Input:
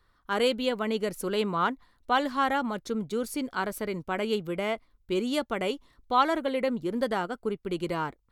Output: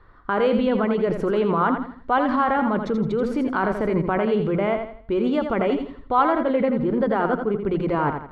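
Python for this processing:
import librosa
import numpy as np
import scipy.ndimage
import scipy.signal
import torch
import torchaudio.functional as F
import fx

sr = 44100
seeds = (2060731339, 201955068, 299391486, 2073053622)

p1 = scipy.signal.sosfilt(scipy.signal.butter(2, 1600.0, 'lowpass', fs=sr, output='sos'), x)
p2 = fx.hum_notches(p1, sr, base_hz=60, count=4)
p3 = fx.over_compress(p2, sr, threshold_db=-35.0, ratio=-0.5)
p4 = p2 + F.gain(torch.from_numpy(p3), 1.5).numpy()
p5 = fx.echo_feedback(p4, sr, ms=83, feedback_pct=35, wet_db=-7)
y = F.gain(torch.from_numpy(p5), 4.5).numpy()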